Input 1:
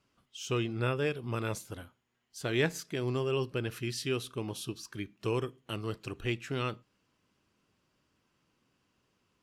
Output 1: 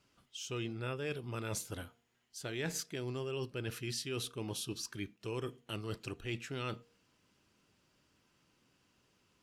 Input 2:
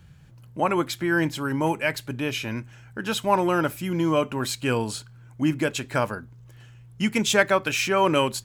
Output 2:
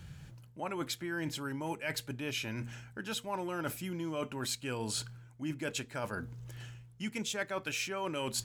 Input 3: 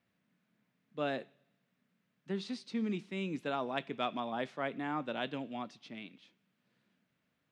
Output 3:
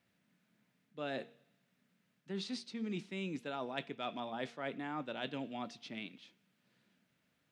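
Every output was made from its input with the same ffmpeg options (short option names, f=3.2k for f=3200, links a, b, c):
-af "areverse,acompressor=threshold=-39dB:ratio=4,areverse,equalizer=f=6.7k:w=0.44:g=3.5,bandreject=f=1.1k:w=18,bandreject=f=235.2:t=h:w=4,bandreject=f=470.4:t=h:w=4,bandreject=f=705.6:t=h:w=4,volume=1.5dB"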